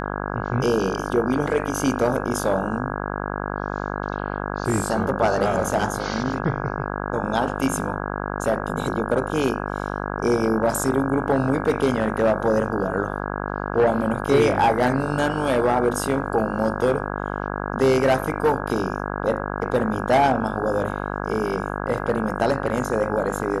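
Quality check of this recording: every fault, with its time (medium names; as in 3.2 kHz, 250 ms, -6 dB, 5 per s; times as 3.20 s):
buzz 50 Hz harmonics 33 -28 dBFS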